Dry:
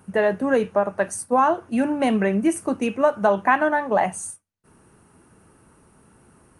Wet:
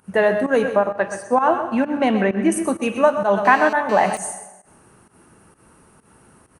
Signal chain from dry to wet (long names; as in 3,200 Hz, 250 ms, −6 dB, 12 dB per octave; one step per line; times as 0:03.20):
0:00.77–0:02.52: high-frequency loss of the air 110 metres
single-tap delay 127 ms −11.5 dB
dense smooth reverb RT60 1.1 s, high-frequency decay 0.85×, pre-delay 85 ms, DRR 12.5 dB
fake sidechain pumping 130 BPM, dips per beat 1, −15 dB, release 132 ms
low-shelf EQ 440 Hz −4 dB
0:03.45–0:04.17: phone interference −35 dBFS
level +4.5 dB